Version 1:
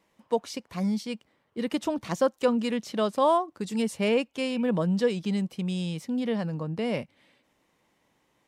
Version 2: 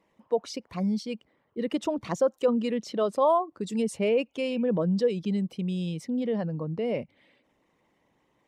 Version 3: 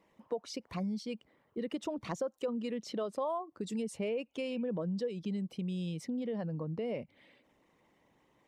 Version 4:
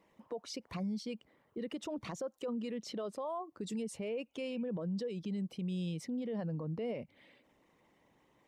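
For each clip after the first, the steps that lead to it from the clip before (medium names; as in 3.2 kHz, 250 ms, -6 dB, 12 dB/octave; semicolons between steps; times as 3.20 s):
resonances exaggerated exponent 1.5
compression 3:1, threshold -36 dBFS, peak gain reduction 13.5 dB
peak limiter -31.5 dBFS, peak gain reduction 8.5 dB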